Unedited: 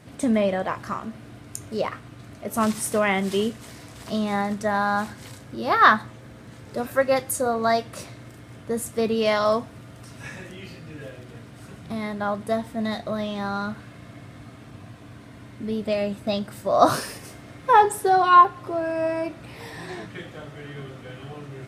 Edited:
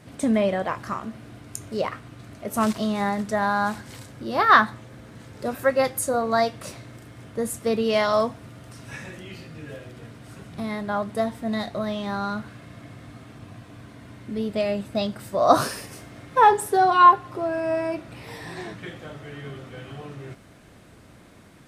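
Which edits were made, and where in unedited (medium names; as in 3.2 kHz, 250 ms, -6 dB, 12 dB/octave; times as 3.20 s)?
2.73–4.05 s: delete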